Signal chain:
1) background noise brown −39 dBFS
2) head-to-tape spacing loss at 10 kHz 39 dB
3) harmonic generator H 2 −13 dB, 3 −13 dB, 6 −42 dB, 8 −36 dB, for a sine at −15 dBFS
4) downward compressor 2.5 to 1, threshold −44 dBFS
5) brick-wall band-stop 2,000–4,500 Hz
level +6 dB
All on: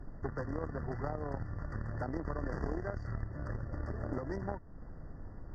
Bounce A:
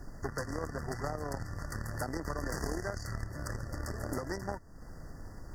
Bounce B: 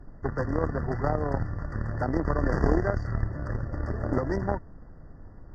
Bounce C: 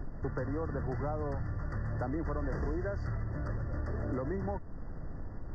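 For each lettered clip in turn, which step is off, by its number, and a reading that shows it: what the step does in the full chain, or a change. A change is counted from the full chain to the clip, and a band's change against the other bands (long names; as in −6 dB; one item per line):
2, 2 kHz band +5.0 dB
4, average gain reduction 8.0 dB
3, change in crest factor −7.0 dB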